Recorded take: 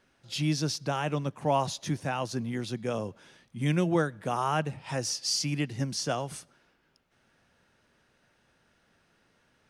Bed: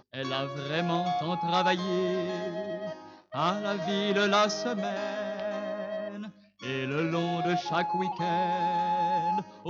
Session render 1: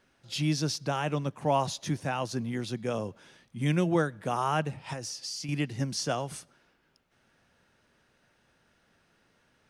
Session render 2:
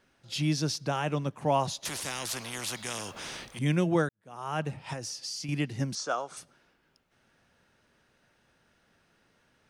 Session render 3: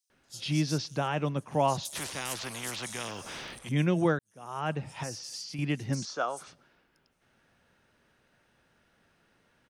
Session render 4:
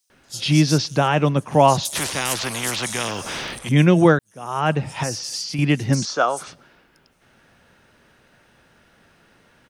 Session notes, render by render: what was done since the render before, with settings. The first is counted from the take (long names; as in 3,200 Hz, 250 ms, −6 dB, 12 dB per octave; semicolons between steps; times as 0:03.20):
0:04.93–0:05.49: downward compressor, threshold −34 dBFS
0:01.85–0:03.59: every bin compressed towards the loudest bin 4 to 1; 0:04.09–0:04.68: fade in quadratic; 0:05.95–0:06.37: loudspeaker in its box 450–7,500 Hz, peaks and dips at 1,300 Hz +9 dB, 1,900 Hz −7 dB, 2,900 Hz −9 dB, 4,900 Hz −5 dB
multiband delay without the direct sound highs, lows 100 ms, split 5,600 Hz
level +12 dB